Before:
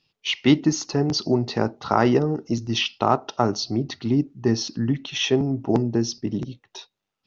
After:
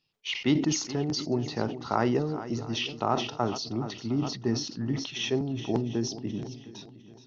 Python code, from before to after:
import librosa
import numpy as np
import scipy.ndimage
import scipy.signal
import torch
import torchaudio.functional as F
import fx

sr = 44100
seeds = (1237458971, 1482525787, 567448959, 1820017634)

p1 = x + fx.echo_swing(x, sr, ms=707, ratio=1.5, feedback_pct=32, wet_db=-15.0, dry=0)
p2 = fx.sustainer(p1, sr, db_per_s=83.0)
y = F.gain(torch.from_numpy(p2), -8.0).numpy()